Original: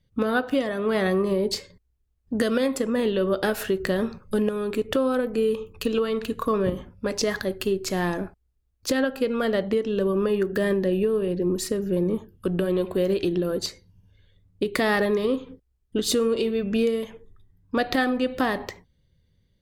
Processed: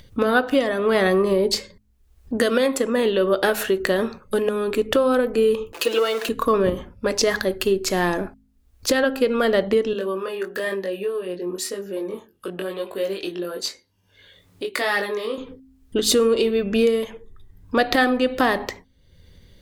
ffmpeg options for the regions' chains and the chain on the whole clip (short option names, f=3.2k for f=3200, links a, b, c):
-filter_complex "[0:a]asettb=1/sr,asplit=3[a][b][c];[a]atrim=end=2.374[d];[b]atrim=start=2.37:end=4.68,asetpts=PTS-STARTPTS,afade=t=in:d=0.004:c=qsin,afade=t=out:st=2.306:d=0.004:c=qsin,lowshelf=f=130:g=-8,bandreject=f=5k:w=13[e];[c]atrim=start=4.676[f];[d][e]acrossfade=d=0.004:c1=hsin:c2=qsin[g];[g][f]acrossfade=d=0.004:c1=qsin:c2=hsin,asettb=1/sr,asplit=3[h][i][j];[h]atrim=end=5.734[k];[i]atrim=start=5.73:end=6.29,asetpts=PTS-STARTPTS,afade=t=in:d=0.004:c=qsin,afade=t=out:st=0.556:d=0.004:c=qsin,aeval=exprs='val(0)+0.5*0.0178*sgn(val(0))':c=same,highpass=f=310:w=0.5412,highpass=f=310:w=1.3066,aecho=1:1:5.9:0.64,atrim=end_sample=24696[l];[j]atrim=start=6.286[m];[k][l]acrossfade=d=0.004:c1=hsin:c2=qsin[n];[n][m]acrossfade=d=0.004:c1=qsin:c2=hsin,asettb=1/sr,asplit=3[o][p][q];[o]atrim=end=9.934[r];[p]atrim=start=9.93:end=15.38,asetpts=PTS-STARTPTS,afade=t=in:d=0.004:c=qsin,afade=t=out:st=5.446:d=0.004:c=qsin,highpass=f=660:p=1,flanger=delay=20:depth=2.7:speed=1[s];[q]atrim=start=15.376[t];[r][s]acrossfade=d=0.004:c1=hsin:c2=qsin[u];[u][t]acrossfade=d=0.004:c1=qsin:c2=hsin,equalizer=f=140:t=o:w=1.4:g=-7,bandreject=f=52.84:t=h:w=4,bandreject=f=105.68:t=h:w=4,bandreject=f=158.52:t=h:w=4,bandreject=f=211.36:t=h:w=4,bandreject=f=264.2:t=h:w=4,acompressor=mode=upward:threshold=-41dB:ratio=2.5,volume=6dB"